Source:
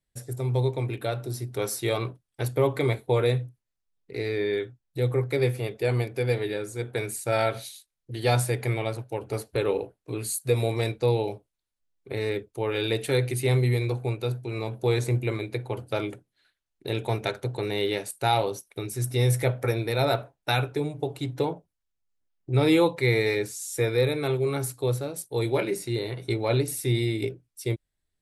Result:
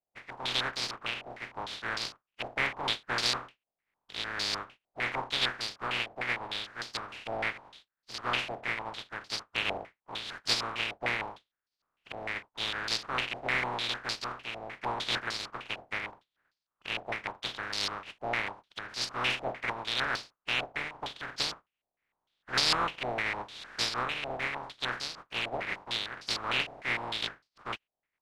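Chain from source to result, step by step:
compressing power law on the bin magnitudes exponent 0.11
low-pass on a step sequencer 6.6 Hz 710–4,700 Hz
level −8 dB

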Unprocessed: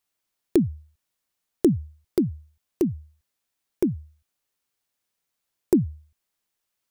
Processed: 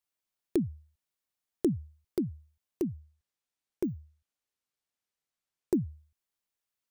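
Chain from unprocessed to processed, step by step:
0:02.96–0:05.75: bad sample-rate conversion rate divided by 2×, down filtered, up hold
level −8.5 dB

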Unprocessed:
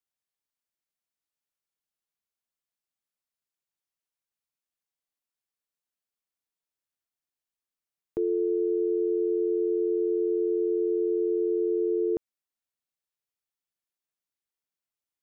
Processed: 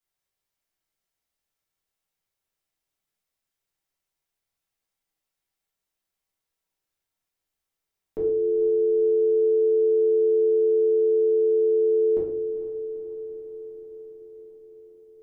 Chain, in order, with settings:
brickwall limiter −23.5 dBFS, peak gain reduction 3.5 dB
feedback delay with all-pass diffusion 456 ms, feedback 69%, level −12 dB
rectangular room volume 100 cubic metres, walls mixed, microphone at 1.6 metres

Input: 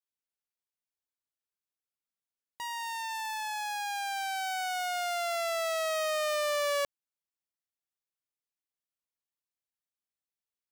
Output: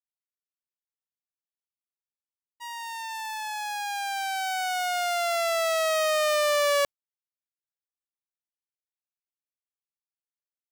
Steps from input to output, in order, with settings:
downward expander −31 dBFS
level +6.5 dB

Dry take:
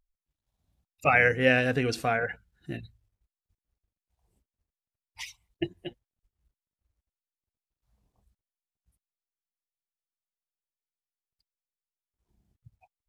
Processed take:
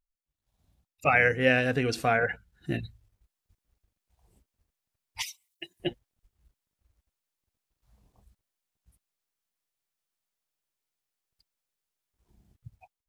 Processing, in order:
0:05.22–0:05.80: first difference
automatic gain control gain up to 15.5 dB
level −7.5 dB

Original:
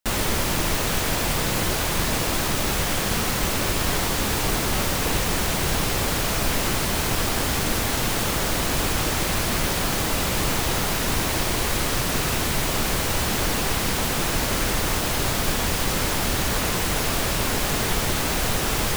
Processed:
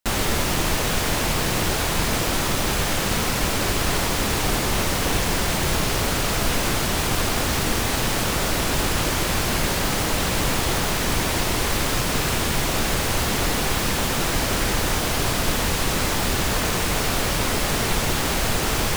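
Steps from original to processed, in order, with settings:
highs frequency-modulated by the lows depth 0.55 ms
level +1.5 dB

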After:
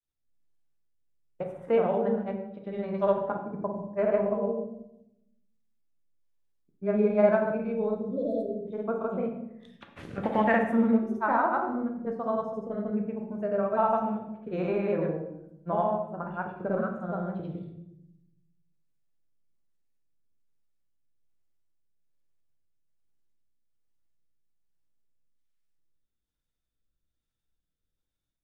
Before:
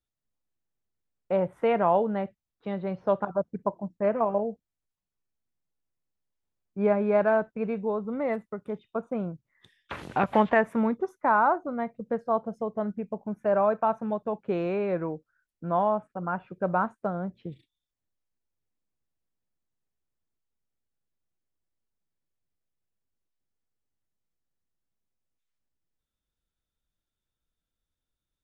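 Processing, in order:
rotating-speaker cabinet horn 1.2 Hz
time-frequency box erased 0:07.98–0:08.70, 670–3,300 Hz
granular cloud, pitch spread up and down by 0 semitones
on a send: convolution reverb RT60 0.85 s, pre-delay 12 ms, DRR 3 dB

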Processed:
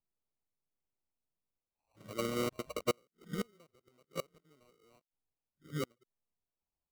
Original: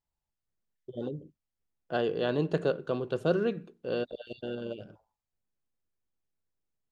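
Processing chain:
played backwards from end to start
notch filter 2,600 Hz, Q 10
sample-rate reduction 1,700 Hz, jitter 0%
gate with flip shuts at −26 dBFS, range −30 dB
expander for the loud parts 1.5 to 1, over −55 dBFS
level +4.5 dB

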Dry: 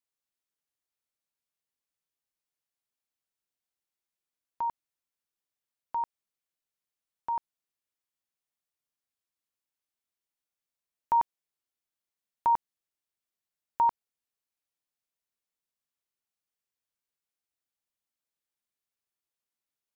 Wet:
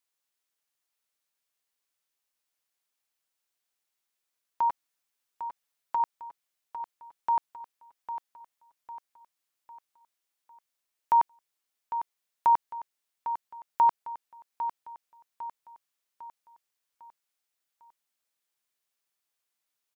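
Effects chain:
low-shelf EQ 370 Hz −10.5 dB
in parallel at +1.5 dB: brickwall limiter −25.5 dBFS, peak gain reduction 5.5 dB
0:04.68–0:06.00: on the sum: comb filter 7.1 ms, depth 55%
repeating echo 802 ms, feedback 46%, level −10.5 dB

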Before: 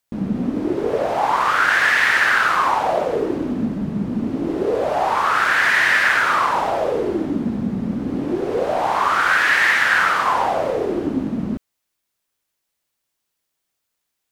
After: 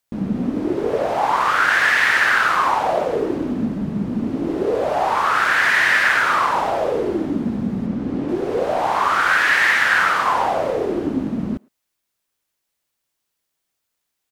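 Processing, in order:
0:07.86–0:08.29: high-shelf EQ 8,700 Hz −10.5 dB
far-end echo of a speakerphone 110 ms, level −26 dB

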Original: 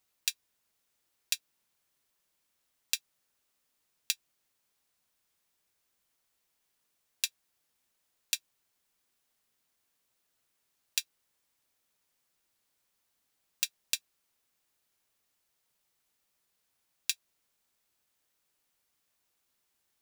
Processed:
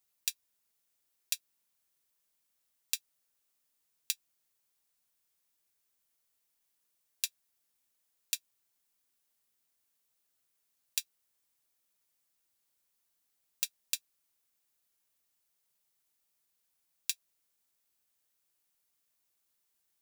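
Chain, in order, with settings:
high-shelf EQ 6,200 Hz +8 dB
level −6.5 dB

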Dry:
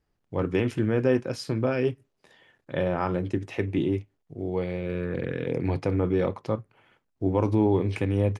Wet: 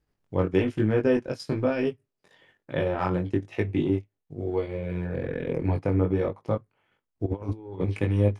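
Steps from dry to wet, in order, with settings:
0:04.68–0:06.51: parametric band 4,300 Hz −6 dB 1.4 octaves
transient designer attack +2 dB, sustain −10 dB
chorus effect 1.1 Hz, delay 19 ms, depth 2.6 ms
0:07.26–0:07.88: compressor whose output falls as the input rises −33 dBFS, ratio −0.5
level +3 dB

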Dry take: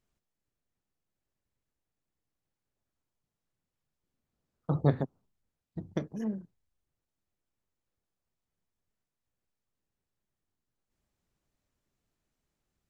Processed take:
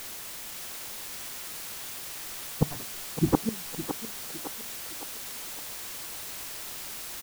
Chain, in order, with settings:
gate on every frequency bin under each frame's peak −15 dB strong
comb filter 2.6 ms, depth 39%
automatic gain control gain up to 5 dB
sine wavefolder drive 11 dB, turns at −8.5 dBFS
time stretch by phase vocoder 0.56×
gate with flip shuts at −13 dBFS, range −26 dB
in parallel at −4 dB: bit-depth reduction 6 bits, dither triangular
on the sum: feedback echo with a high-pass in the loop 560 ms, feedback 63%, high-pass 340 Hz, level −7.5 dB

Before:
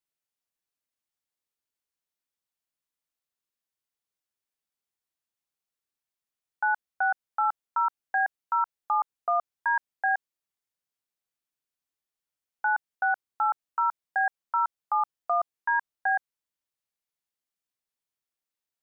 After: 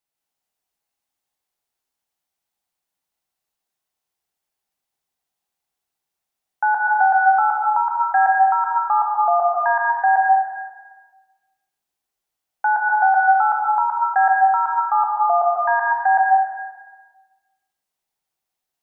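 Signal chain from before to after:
parametric band 770 Hz +8.5 dB 0.44 octaves
dense smooth reverb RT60 1.3 s, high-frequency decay 0.95×, pre-delay 115 ms, DRR −2 dB
level +3 dB

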